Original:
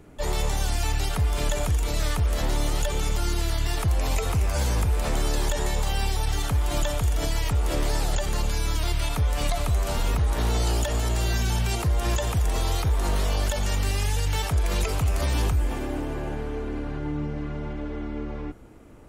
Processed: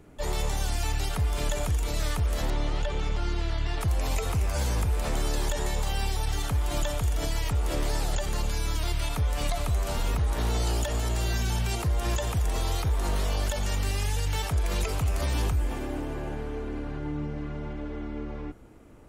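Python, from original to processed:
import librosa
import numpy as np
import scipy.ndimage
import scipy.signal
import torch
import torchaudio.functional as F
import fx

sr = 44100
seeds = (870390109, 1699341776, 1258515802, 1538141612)

y = fx.lowpass(x, sr, hz=3800.0, slope=12, at=(2.5, 3.81))
y = y * librosa.db_to_amplitude(-3.0)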